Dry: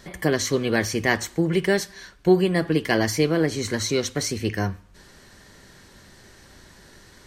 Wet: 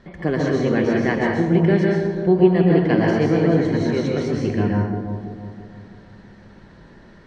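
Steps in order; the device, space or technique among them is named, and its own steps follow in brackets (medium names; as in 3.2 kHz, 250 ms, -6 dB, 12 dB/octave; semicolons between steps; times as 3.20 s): phone in a pocket (low-pass 3.6 kHz 12 dB/octave; peaking EQ 210 Hz +4 dB 0.76 oct; treble shelf 2.4 kHz -9 dB); bucket-brigade echo 333 ms, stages 2048, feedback 43%, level -7.5 dB; plate-style reverb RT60 0.9 s, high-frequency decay 0.85×, pre-delay 110 ms, DRR -2 dB; trim -1 dB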